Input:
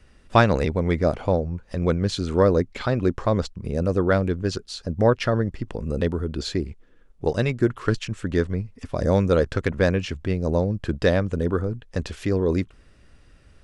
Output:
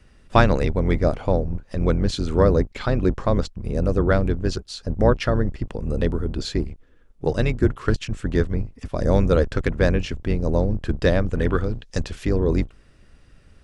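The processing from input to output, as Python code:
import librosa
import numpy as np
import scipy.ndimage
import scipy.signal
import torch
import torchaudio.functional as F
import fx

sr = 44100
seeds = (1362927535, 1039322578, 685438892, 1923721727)

y = fx.octave_divider(x, sr, octaves=2, level_db=1.0)
y = fx.peak_eq(y, sr, hz=fx.line((11.34, 1800.0), (11.99, 7000.0)), db=13.5, octaves=1.6, at=(11.34, 11.99), fade=0.02)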